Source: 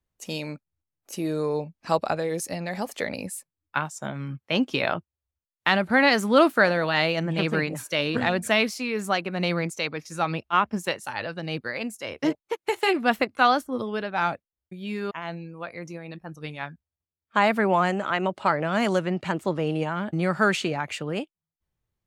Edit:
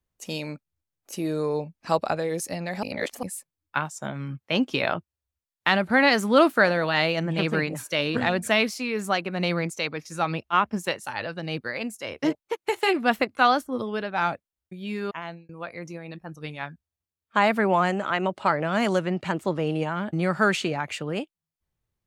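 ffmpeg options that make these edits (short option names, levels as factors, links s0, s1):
-filter_complex "[0:a]asplit=4[s0][s1][s2][s3];[s0]atrim=end=2.832[s4];[s1]atrim=start=2.828:end=3.232,asetpts=PTS-STARTPTS,areverse[s5];[s2]atrim=start=3.228:end=15.49,asetpts=PTS-STARTPTS,afade=t=out:st=11.972:d=0.29[s6];[s3]atrim=start=15.49,asetpts=PTS-STARTPTS,afade=t=in:d=0.004:c=hsin[s7];[s4][s5]acrossfade=d=0.004:c1=hsin:c2=hsin[s8];[s6][s7]concat=n=2:v=0:a=1[s9];[s8][s9]acrossfade=d=0.004:c1=hsin:c2=hsin"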